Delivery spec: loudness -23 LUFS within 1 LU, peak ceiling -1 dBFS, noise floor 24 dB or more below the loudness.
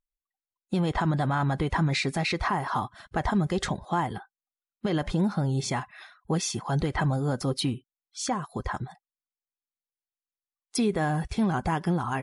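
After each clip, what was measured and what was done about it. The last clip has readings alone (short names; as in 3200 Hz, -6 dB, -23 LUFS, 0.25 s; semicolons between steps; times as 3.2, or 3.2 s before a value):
loudness -28.0 LUFS; peak -16.0 dBFS; loudness target -23.0 LUFS
-> gain +5 dB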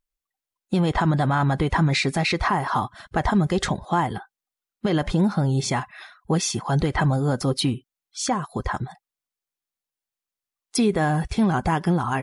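loudness -23.0 LUFS; peak -11.0 dBFS; noise floor -90 dBFS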